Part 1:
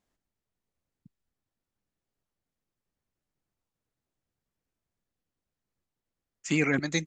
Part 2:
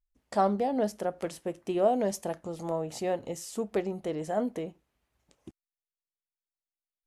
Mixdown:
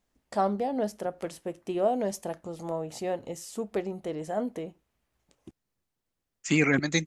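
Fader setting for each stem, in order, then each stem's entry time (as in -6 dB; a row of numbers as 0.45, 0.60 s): +2.5, -1.0 dB; 0.00, 0.00 s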